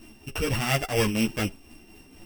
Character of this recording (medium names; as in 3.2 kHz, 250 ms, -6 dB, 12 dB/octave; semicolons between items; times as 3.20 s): a buzz of ramps at a fixed pitch in blocks of 16 samples; tremolo triangle 4.2 Hz, depth 55%; a shimmering, thickened sound